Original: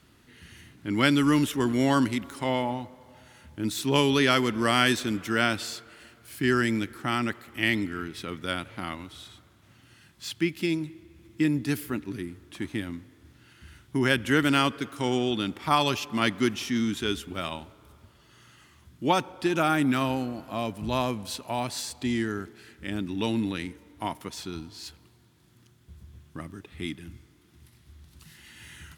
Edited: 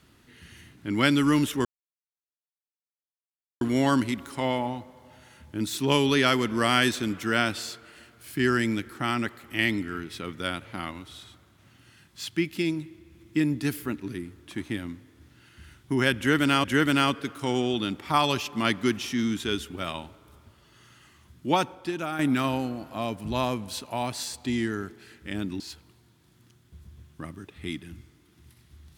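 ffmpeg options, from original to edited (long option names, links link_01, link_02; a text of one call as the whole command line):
ffmpeg -i in.wav -filter_complex "[0:a]asplit=5[link_01][link_02][link_03][link_04][link_05];[link_01]atrim=end=1.65,asetpts=PTS-STARTPTS,afade=type=out:start_time=1.646:duration=0.004:curve=hsin,apad=pad_dur=1.96[link_06];[link_02]atrim=start=1.65:end=14.682,asetpts=PTS-STARTPTS,afade=type=in:duration=0.004:curve=hsin[link_07];[link_03]atrim=start=14.208:end=19.76,asetpts=PTS-STARTPTS,afade=type=out:start_time=5.022:duration=0.53:curve=qua:silence=0.375837[link_08];[link_04]atrim=start=19.76:end=23.172,asetpts=PTS-STARTPTS,afade=type=in:duration=0.004:curve=hsin:silence=0.375837[link_09];[link_05]atrim=start=24.758[link_10];[link_06][link_07]concat=n=2:v=0:a=1[link_11];[link_08][link_09]concat=n=2:v=0:a=1[link_12];[link_11][link_12]acrossfade=duration=0.004:curve1=hsin:curve2=hsin[link_13];[link_13][link_10]acrossfade=duration=0.004:curve1=hsin:curve2=hsin" out.wav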